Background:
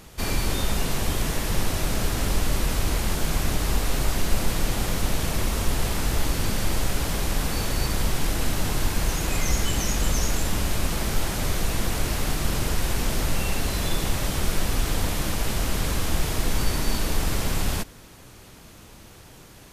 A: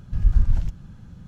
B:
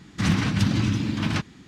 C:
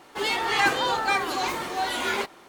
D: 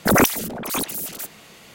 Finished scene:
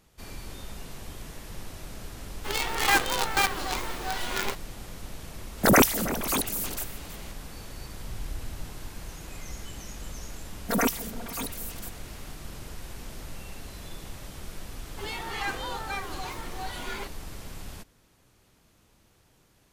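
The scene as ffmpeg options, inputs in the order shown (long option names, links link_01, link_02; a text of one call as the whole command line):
ffmpeg -i bed.wav -i cue0.wav -i cue1.wav -i cue2.wav -i cue3.wav -filter_complex "[3:a]asplit=2[link_01][link_02];[4:a]asplit=2[link_03][link_04];[0:a]volume=-16dB[link_05];[link_01]acrusher=bits=4:dc=4:mix=0:aa=0.000001[link_06];[link_03]aecho=1:1:321:0.178[link_07];[1:a]acompressor=threshold=-16dB:ratio=6:attack=3.2:release=140:knee=1:detection=peak[link_08];[link_04]aecho=1:1:4.3:0.92[link_09];[link_06]atrim=end=2.48,asetpts=PTS-STARTPTS,volume=-1dB,afade=type=in:duration=0.004:curve=hsin,afade=type=out:start_time=2.476:duration=0.004:curve=hsin,adelay=2290[link_10];[link_07]atrim=end=1.74,asetpts=PTS-STARTPTS,volume=-2.5dB,afade=type=in:duration=0.004:curve=hsin,afade=type=out:start_time=1.736:duration=0.004:curve=hsin,adelay=5580[link_11];[link_08]atrim=end=1.27,asetpts=PTS-STARTPTS,volume=-15dB,afade=type=in:duration=0.004:curve=hsin,afade=type=out:start_time=1.266:duration=0.004:curve=hsin,adelay=7950[link_12];[link_09]atrim=end=1.74,asetpts=PTS-STARTPTS,volume=-12.5dB,afade=type=in:duration=0.1,afade=type=out:start_time=1.64:duration=0.1,adelay=10630[link_13];[link_02]atrim=end=2.48,asetpts=PTS-STARTPTS,volume=-10.5dB,afade=type=in:duration=0.004:curve=hsin,afade=type=out:start_time=2.476:duration=0.004:curve=hsin,adelay=14820[link_14];[link_05][link_10][link_11][link_12][link_13][link_14]amix=inputs=6:normalize=0" out.wav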